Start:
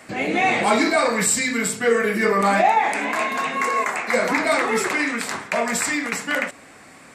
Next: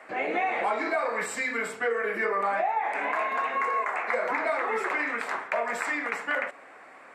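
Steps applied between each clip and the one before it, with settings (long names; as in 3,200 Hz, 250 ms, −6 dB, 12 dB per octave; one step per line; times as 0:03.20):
three-way crossover with the lows and the highs turned down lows −22 dB, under 390 Hz, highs −19 dB, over 2,300 Hz
downward compressor 6 to 1, threshold −24 dBFS, peak gain reduction 10.5 dB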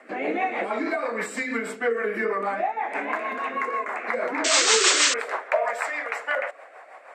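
sound drawn into the spectrogram noise, 0:04.44–0:05.14, 980–8,400 Hz −20 dBFS
rotating-speaker cabinet horn 6.3 Hz
high-pass filter sweep 230 Hz → 620 Hz, 0:04.16–0:05.69
level +2.5 dB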